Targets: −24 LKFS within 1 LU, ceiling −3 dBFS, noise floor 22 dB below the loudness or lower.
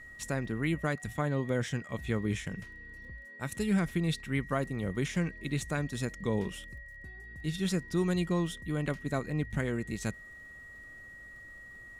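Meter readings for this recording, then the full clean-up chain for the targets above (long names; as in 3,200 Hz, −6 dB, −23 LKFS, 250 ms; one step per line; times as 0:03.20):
crackle rate 20 per second; interfering tone 1,900 Hz; level of the tone −47 dBFS; integrated loudness −33.0 LKFS; sample peak −17.0 dBFS; target loudness −24.0 LKFS
→ click removal
notch filter 1,900 Hz, Q 30
level +9 dB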